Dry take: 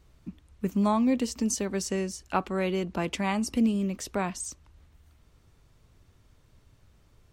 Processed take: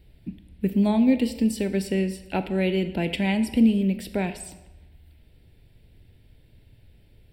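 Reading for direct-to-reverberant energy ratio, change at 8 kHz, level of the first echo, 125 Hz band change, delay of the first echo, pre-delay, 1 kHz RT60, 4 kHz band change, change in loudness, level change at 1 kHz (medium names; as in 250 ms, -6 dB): 10.5 dB, -7.0 dB, no echo, +6.0 dB, no echo, 25 ms, 1.0 s, +3.5 dB, +5.0 dB, -3.0 dB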